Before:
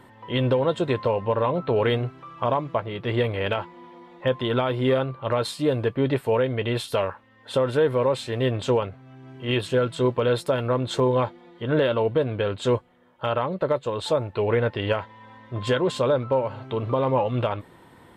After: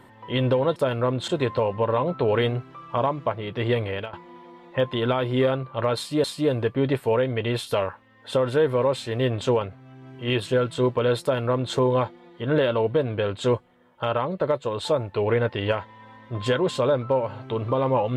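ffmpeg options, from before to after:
-filter_complex "[0:a]asplit=5[s0][s1][s2][s3][s4];[s0]atrim=end=0.762[s5];[s1]atrim=start=10.428:end=10.952[s6];[s2]atrim=start=0.758:end=3.61,asetpts=PTS-STARTPTS,afade=t=out:st=2.562:d=0.29:silence=0.141254[s7];[s3]atrim=start=3.61:end=5.722,asetpts=PTS-STARTPTS,afade=t=in:d=0.004:c=hsin:silence=0.141254[s8];[s4]atrim=start=5.448[s9];[s5][s6]acrossfade=d=0.004:c1=hsin:c2=hsin[s10];[s7][s8]concat=n=2:v=0:a=1[s11];[s10][s11]acrossfade=d=0.004:c1=hsin:c2=hsin[s12];[s12][s9]acrossfade=d=0.004:c1=hsin:c2=hsin"

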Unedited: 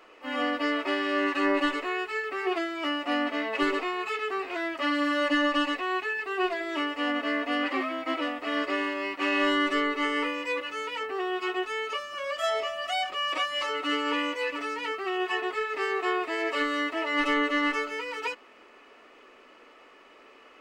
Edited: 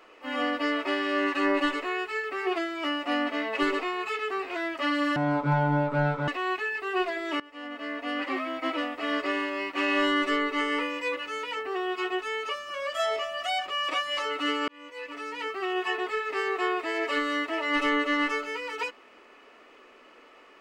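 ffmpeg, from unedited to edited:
-filter_complex "[0:a]asplit=5[s0][s1][s2][s3][s4];[s0]atrim=end=5.164[s5];[s1]atrim=start=5.16:end=5.72,asetpts=PTS-STARTPTS,asetrate=22050,aresample=44100[s6];[s2]atrim=start=5.716:end=6.84,asetpts=PTS-STARTPTS,afade=t=out:st=1.12:d=0.004:c=hsin:silence=0.0891251[s7];[s3]atrim=start=6.84:end=14.12,asetpts=PTS-STARTPTS,afade=t=in:d=1.14:silence=0.0891251,afade=t=out:st=7.276:d=0.004:c=hsin[s8];[s4]atrim=start=14.12,asetpts=PTS-STARTPTS,afade=t=in:d=0.91[s9];[s5][s6]acrossfade=d=0.004:c1=hsin:c2=hsin[s10];[s7][s8][s9]concat=n=3:v=0:a=1[s11];[s10][s11]acrossfade=d=0.004:c1=hsin:c2=hsin"

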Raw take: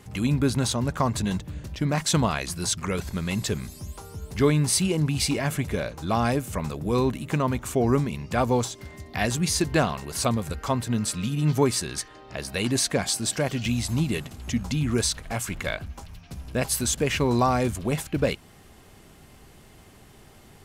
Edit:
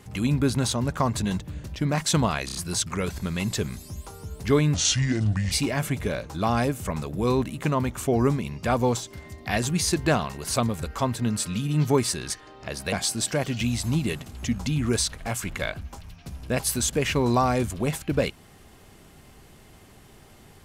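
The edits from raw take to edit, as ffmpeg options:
-filter_complex "[0:a]asplit=7[s0][s1][s2][s3][s4][s5][s6];[s0]atrim=end=2.492[s7];[s1]atrim=start=2.458:end=2.492[s8];[s2]atrim=start=2.458:end=2.492[s9];[s3]atrim=start=2.458:end=4.654[s10];[s4]atrim=start=4.65:end=5.19,asetpts=PTS-STARTPTS,asetrate=30870,aresample=44100[s11];[s5]atrim=start=5.186:end=12.602[s12];[s6]atrim=start=12.968[s13];[s7][s8]acrossfade=d=0.004:c1=hsin:c2=hsin[s14];[s14][s9]acrossfade=d=0.004:c1=hsin:c2=hsin[s15];[s15][s10]acrossfade=d=0.004:c1=hsin:c2=hsin[s16];[s16][s11]acrossfade=d=0.004:c1=hsin:c2=hsin[s17];[s17][s12]acrossfade=d=0.004:c1=hsin:c2=hsin[s18];[s18][s13]acrossfade=d=0.004:c1=hsin:c2=hsin"

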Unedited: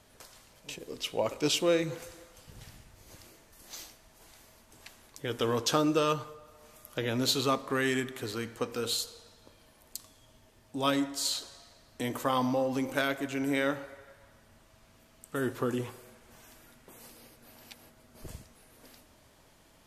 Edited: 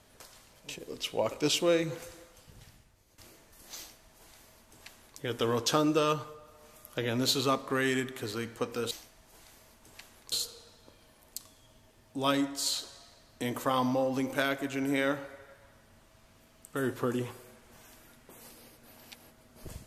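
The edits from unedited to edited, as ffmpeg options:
-filter_complex "[0:a]asplit=4[s0][s1][s2][s3];[s0]atrim=end=3.18,asetpts=PTS-STARTPTS,afade=t=out:st=2.13:d=1.05:silence=0.158489[s4];[s1]atrim=start=3.18:end=8.912,asetpts=PTS-STARTPTS,afade=t=in:d=0.004:c=hsin:silence=0.158489[s5];[s2]atrim=start=3.778:end=5.192[s6];[s3]atrim=start=8.908[s7];[s4][s5]concat=n=2:v=0:a=1[s8];[s8][s6]acrossfade=d=0.004:c1=hsin:c2=hsin[s9];[s9][s7]acrossfade=d=0.004:c1=hsin:c2=hsin"

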